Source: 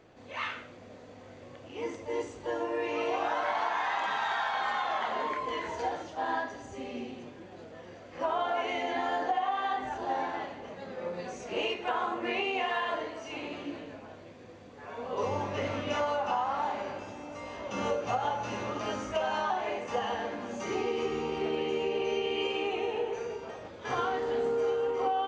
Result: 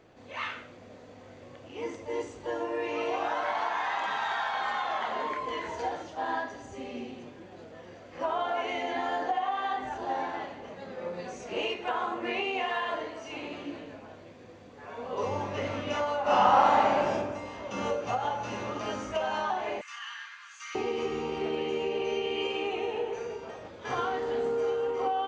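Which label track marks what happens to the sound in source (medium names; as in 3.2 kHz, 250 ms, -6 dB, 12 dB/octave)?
16.220000	17.130000	reverb throw, RT60 1.1 s, DRR -10.5 dB
19.810000	20.750000	steep high-pass 1.2 kHz 48 dB/octave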